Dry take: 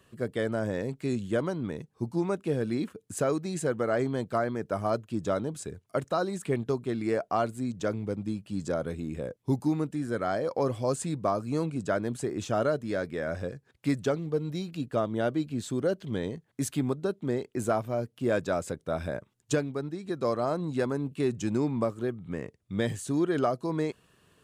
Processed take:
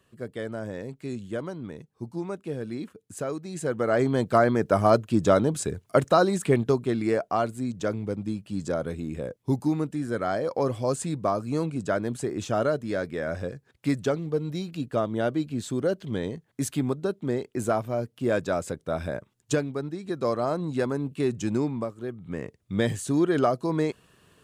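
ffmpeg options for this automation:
-af "volume=19dB,afade=t=in:st=3.48:d=1.02:silence=0.223872,afade=t=out:st=6.1:d=1.21:silence=0.446684,afade=t=out:st=21.58:d=0.36:silence=0.398107,afade=t=in:st=21.94:d=0.65:silence=0.316228"

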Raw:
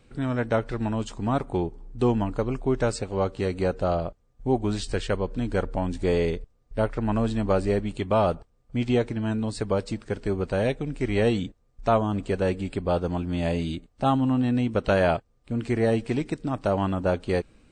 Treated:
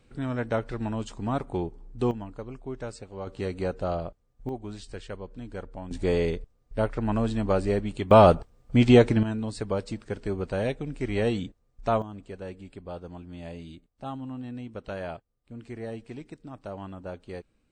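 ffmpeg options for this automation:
-af "asetnsamples=n=441:p=0,asendcmd='2.11 volume volume -12dB;3.27 volume volume -4.5dB;4.49 volume volume -12dB;5.91 volume volume -1.5dB;8.11 volume volume 7dB;9.23 volume volume -3.5dB;12.02 volume volume -14dB',volume=-3.5dB"

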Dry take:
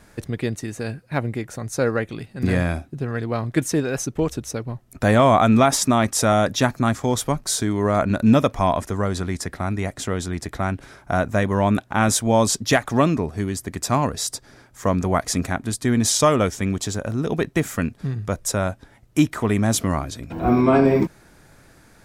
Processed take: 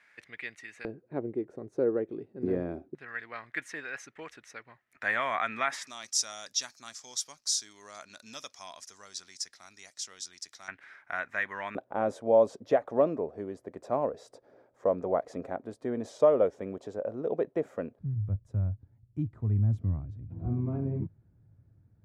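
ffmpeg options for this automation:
-af "asetnsamples=n=441:p=0,asendcmd='0.85 bandpass f 380;2.95 bandpass f 1900;5.87 bandpass f 5500;10.68 bandpass f 1900;11.75 bandpass f 530;17.99 bandpass f 100',bandpass=f=2.1k:t=q:w=3.3:csg=0"

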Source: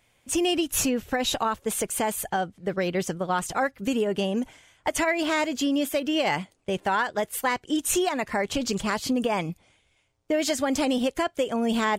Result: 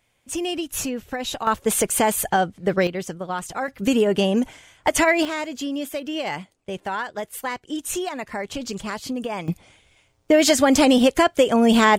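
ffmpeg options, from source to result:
-af "asetnsamples=n=441:p=0,asendcmd='1.47 volume volume 7dB;2.87 volume volume -2dB;3.68 volume volume 6.5dB;5.25 volume volume -3dB;9.48 volume volume 9dB',volume=-2.5dB"

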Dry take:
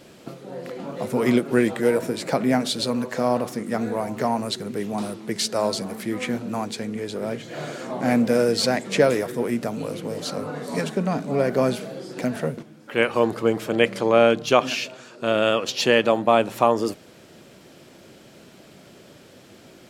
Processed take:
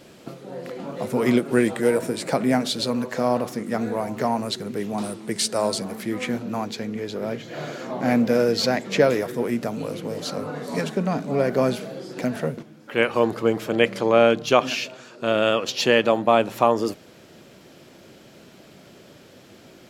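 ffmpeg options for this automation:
-af "asetnsamples=n=441:p=0,asendcmd='1.42 equalizer g 5;2.59 equalizer g -3.5;5.04 equalizer g 7;5.78 equalizer g -3.5;6.43 equalizer g -14.5;9.22 equalizer g -5',equalizer=f=8.8k:t=o:w=0.3:g=-1"

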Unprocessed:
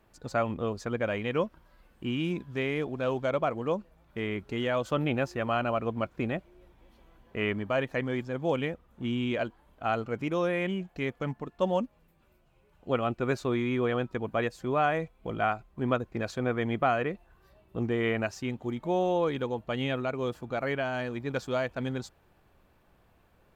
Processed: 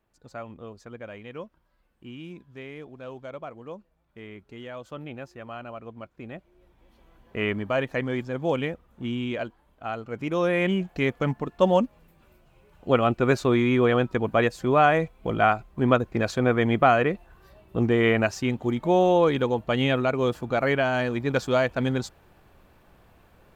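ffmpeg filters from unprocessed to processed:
-af "volume=14.5dB,afade=t=in:st=6.22:d=1.15:silence=0.223872,afade=t=out:st=8.59:d=1.43:silence=0.446684,afade=t=in:st=10.02:d=0.7:silence=0.266073"

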